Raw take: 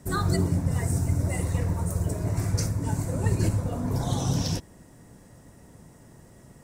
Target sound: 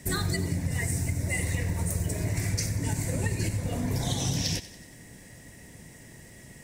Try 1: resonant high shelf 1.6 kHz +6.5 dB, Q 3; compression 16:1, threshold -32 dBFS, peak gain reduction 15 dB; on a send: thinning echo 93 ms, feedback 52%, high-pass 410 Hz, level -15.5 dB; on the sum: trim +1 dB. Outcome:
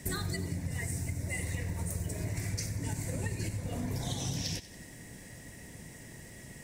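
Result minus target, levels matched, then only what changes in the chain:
compression: peak gain reduction +6.5 dB
change: compression 16:1, threshold -25 dBFS, peak gain reduction 8.5 dB

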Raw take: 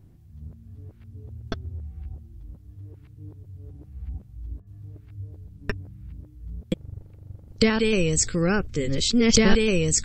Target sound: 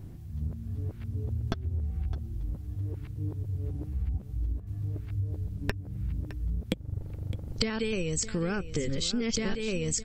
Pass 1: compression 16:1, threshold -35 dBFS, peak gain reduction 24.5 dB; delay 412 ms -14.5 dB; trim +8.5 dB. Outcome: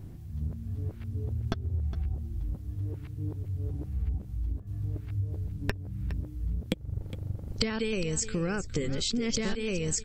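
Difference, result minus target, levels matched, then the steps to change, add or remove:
echo 200 ms early
change: delay 612 ms -14.5 dB

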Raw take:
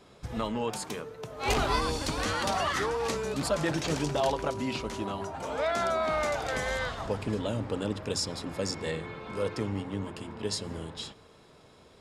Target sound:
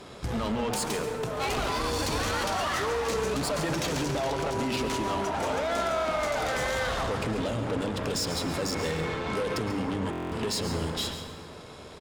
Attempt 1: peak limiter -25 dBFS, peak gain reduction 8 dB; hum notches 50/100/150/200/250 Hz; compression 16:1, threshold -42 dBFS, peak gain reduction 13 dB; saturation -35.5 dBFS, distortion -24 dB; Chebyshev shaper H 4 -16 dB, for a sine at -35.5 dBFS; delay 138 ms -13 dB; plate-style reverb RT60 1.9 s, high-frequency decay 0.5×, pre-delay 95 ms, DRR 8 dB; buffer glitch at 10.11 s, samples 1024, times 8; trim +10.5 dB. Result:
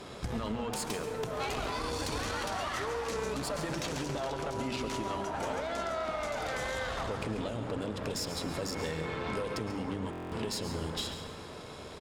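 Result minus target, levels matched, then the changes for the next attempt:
compression: peak gain reduction +9 dB
change: compression 16:1, threshold -32.5 dBFS, peak gain reduction 4.5 dB

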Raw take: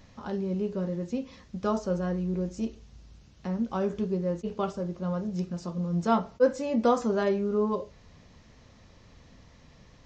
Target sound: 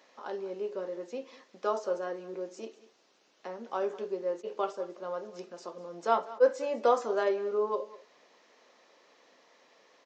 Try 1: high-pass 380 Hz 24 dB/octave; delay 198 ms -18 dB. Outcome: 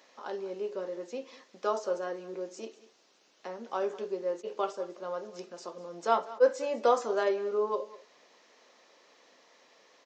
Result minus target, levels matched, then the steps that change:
8 kHz band +3.5 dB
add after high-pass: treble shelf 3.8 kHz -5 dB

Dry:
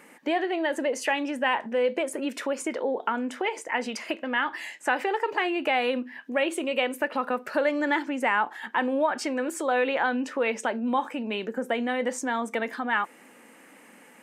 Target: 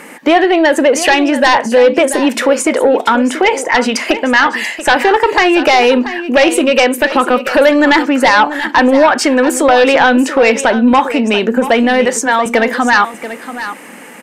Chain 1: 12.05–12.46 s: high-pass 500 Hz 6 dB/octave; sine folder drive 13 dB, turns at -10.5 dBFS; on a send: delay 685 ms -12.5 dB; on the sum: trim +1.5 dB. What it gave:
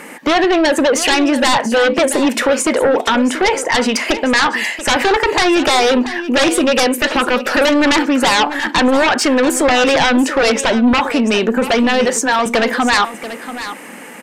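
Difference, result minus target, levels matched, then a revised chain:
sine folder: distortion +11 dB
12.05–12.46 s: high-pass 500 Hz 6 dB/octave; sine folder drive 13 dB, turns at -4.5 dBFS; on a send: delay 685 ms -12.5 dB; on the sum: trim +1.5 dB

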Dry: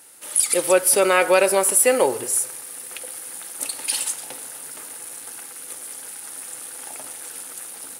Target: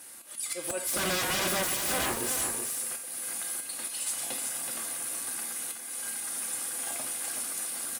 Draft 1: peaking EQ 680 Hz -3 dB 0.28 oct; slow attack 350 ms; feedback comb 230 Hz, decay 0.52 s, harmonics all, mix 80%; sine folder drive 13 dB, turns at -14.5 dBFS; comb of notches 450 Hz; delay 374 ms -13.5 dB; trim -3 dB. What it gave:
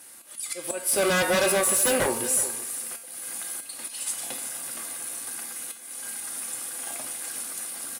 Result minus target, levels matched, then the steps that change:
sine folder: distortion -11 dB; echo-to-direct -7 dB
change: sine folder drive 13 dB, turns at -22 dBFS; change: delay 374 ms -6.5 dB

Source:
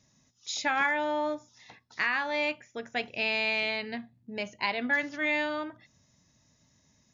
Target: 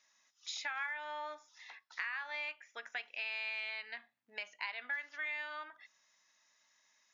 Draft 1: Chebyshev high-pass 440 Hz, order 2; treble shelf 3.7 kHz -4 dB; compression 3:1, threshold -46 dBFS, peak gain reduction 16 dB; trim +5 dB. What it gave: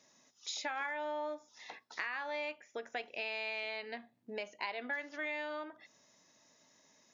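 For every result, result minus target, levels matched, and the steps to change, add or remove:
500 Hz band +11.0 dB; 8 kHz band +2.5 dB
change: Chebyshev high-pass 1.5 kHz, order 2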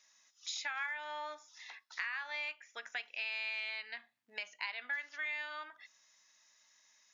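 8 kHz band +2.5 dB
change: treble shelf 3.7 kHz -12 dB

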